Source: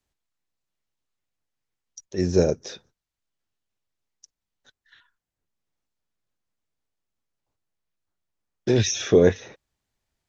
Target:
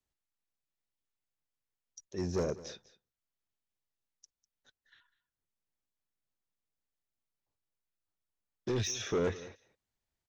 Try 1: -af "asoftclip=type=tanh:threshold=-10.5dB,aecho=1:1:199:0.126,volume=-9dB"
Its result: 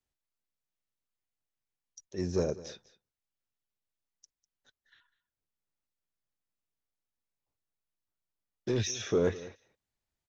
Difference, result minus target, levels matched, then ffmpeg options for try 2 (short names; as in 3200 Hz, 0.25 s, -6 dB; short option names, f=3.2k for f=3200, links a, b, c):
soft clip: distortion -8 dB
-af "asoftclip=type=tanh:threshold=-17.5dB,aecho=1:1:199:0.126,volume=-9dB"